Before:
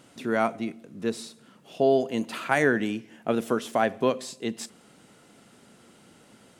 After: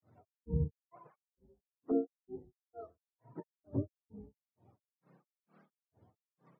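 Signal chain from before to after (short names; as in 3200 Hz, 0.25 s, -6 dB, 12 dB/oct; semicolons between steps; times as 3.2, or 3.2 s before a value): spectrum mirrored in octaves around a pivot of 400 Hz; grains 0.258 s, grains 2.2/s, spray 0.279 s, pitch spread up and down by 12 st; treble ducked by the level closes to 480 Hz, closed at -25.5 dBFS; gain -6.5 dB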